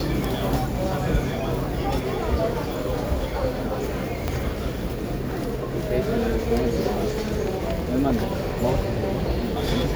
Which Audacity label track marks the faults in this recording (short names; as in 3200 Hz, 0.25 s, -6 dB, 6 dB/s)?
4.280000	4.280000	pop -10 dBFS